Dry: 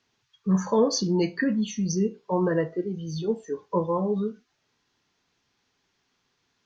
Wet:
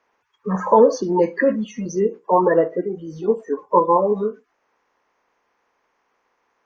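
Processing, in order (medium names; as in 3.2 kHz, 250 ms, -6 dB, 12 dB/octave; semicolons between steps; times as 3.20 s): coarse spectral quantiser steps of 30 dB; graphic EQ 125/250/500/1000/2000/4000 Hz -7/+4/+11/+12/+7/-10 dB; trim -2 dB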